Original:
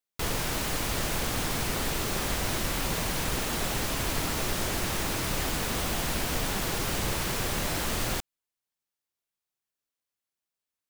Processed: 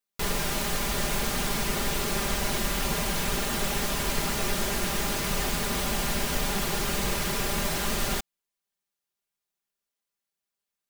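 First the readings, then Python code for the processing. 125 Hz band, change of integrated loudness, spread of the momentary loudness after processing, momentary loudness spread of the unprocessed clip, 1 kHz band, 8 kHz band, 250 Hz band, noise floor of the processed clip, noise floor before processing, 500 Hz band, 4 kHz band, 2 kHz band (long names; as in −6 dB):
−0.5 dB, +1.5 dB, 0 LU, 0 LU, +1.5 dB, +1.5 dB, +2.0 dB, below −85 dBFS, below −85 dBFS, +2.0 dB, +1.5 dB, +1.5 dB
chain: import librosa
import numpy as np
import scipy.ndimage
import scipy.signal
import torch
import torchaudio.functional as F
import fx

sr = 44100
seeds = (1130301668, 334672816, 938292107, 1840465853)

y = x + 0.65 * np.pad(x, (int(5.0 * sr / 1000.0), 0))[:len(x)]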